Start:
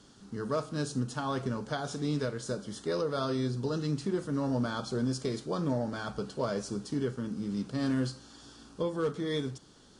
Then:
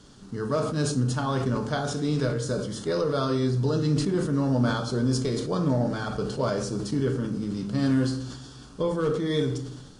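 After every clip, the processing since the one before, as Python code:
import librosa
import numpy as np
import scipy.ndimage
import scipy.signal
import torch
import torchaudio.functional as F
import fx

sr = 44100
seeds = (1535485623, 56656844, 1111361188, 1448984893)

y = fx.low_shelf(x, sr, hz=110.0, db=7.0)
y = fx.room_shoebox(y, sr, seeds[0], volume_m3=140.0, walls='mixed', distance_m=0.4)
y = fx.sustainer(y, sr, db_per_s=51.0)
y = y * librosa.db_to_amplitude(3.5)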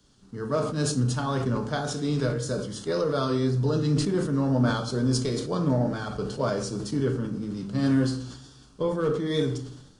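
y = fx.wow_flutter(x, sr, seeds[1], rate_hz=2.1, depth_cents=28.0)
y = fx.band_widen(y, sr, depth_pct=40)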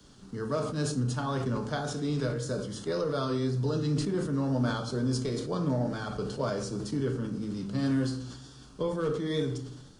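y = fx.band_squash(x, sr, depth_pct=40)
y = y * librosa.db_to_amplitude(-4.5)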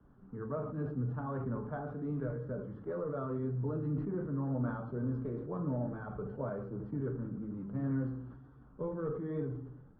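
y = fx.spec_quant(x, sr, step_db=15)
y = scipy.signal.sosfilt(scipy.signal.butter(4, 1500.0, 'lowpass', fs=sr, output='sos'), y)
y = fx.low_shelf(y, sr, hz=140.0, db=3.5)
y = y * librosa.db_to_amplitude(-7.0)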